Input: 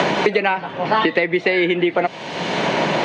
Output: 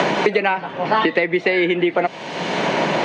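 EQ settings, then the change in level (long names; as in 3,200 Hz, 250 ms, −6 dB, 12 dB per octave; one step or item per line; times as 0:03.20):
high-pass filter 120 Hz
parametric band 3,700 Hz −2 dB
0.0 dB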